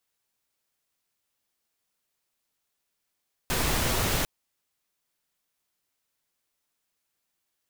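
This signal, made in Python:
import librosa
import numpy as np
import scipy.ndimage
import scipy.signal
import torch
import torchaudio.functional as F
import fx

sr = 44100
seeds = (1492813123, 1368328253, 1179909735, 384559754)

y = fx.noise_colour(sr, seeds[0], length_s=0.75, colour='pink', level_db=-26.0)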